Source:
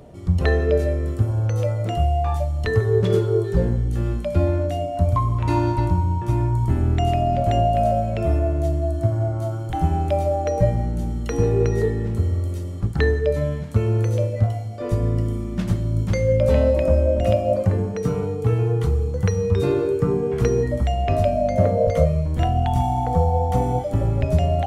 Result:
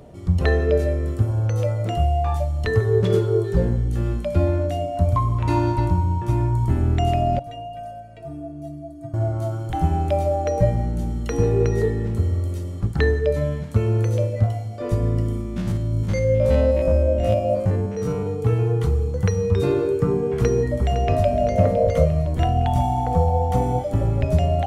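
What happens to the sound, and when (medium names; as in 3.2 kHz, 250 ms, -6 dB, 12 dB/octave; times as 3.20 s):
7.39–9.14 s: inharmonic resonator 140 Hz, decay 0.41 s, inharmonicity 0.03
15.41–18.27 s: spectrogram pixelated in time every 50 ms
20.30–21.32 s: echo throw 510 ms, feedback 60%, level -10.5 dB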